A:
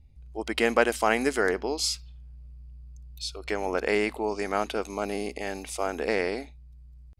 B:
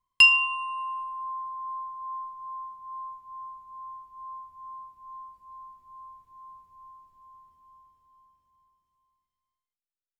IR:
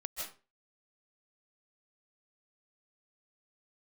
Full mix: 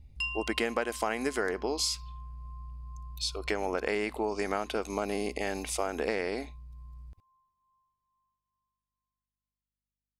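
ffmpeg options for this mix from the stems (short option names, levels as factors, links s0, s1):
-filter_complex "[0:a]acompressor=threshold=0.0355:ratio=6,volume=1.33[s0];[1:a]aeval=exprs='val(0)+0.000178*(sin(2*PI*50*n/s)+sin(2*PI*2*50*n/s)/2+sin(2*PI*3*50*n/s)/3+sin(2*PI*4*50*n/s)/4+sin(2*PI*5*50*n/s)/5)':c=same,volume=0.126[s1];[s0][s1]amix=inputs=2:normalize=0"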